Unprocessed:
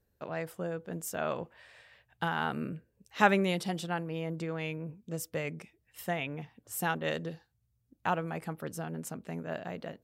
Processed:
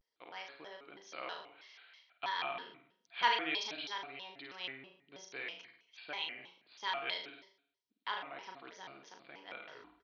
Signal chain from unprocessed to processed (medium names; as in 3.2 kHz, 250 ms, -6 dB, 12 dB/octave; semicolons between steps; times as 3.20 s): tape stop on the ending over 0.46 s; bass shelf 390 Hz -5 dB; hum notches 60/120/180 Hz; small resonant body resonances 370/830/2800 Hz, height 11 dB, ringing for 45 ms; resampled via 11.025 kHz; differentiator; flutter echo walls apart 7.6 m, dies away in 0.57 s; Schroeder reverb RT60 0.61 s, combs from 32 ms, DRR 14 dB; vibrato with a chosen wave square 3.1 Hz, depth 250 cents; trim +5.5 dB